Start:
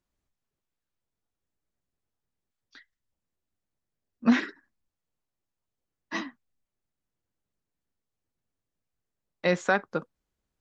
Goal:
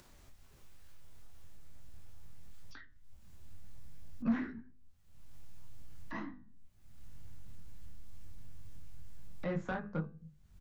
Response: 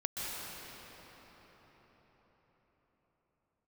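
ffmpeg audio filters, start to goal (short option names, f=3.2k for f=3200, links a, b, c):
-filter_complex "[0:a]bandreject=f=50:t=h:w=6,bandreject=f=100:t=h:w=6,bandreject=f=150:t=h:w=6,bandreject=f=200:t=h:w=6,bandreject=f=250:t=h:w=6,bandreject=f=300:t=h:w=6,bandreject=f=350:t=h:w=6,bandreject=f=400:t=h:w=6,bandreject=f=450:t=h:w=6,bandreject=f=500:t=h:w=6,flanger=delay=19.5:depth=7.3:speed=2.2,acompressor=mode=upward:threshold=-35dB:ratio=2.5,acrossover=split=130|1700[a][b][c];[a]aecho=1:1:169.1|268.2:0.316|0.501[d];[b]alimiter=limit=-20.5dB:level=0:latency=1:release=206[e];[c]acompressor=threshold=-59dB:ratio=6[f];[d][e][f]amix=inputs=3:normalize=0,flanger=delay=9.9:depth=5.4:regen=-80:speed=0.38:shape=triangular,asoftclip=type=tanh:threshold=-29.5dB,asubboost=boost=7:cutoff=150,volume=2dB"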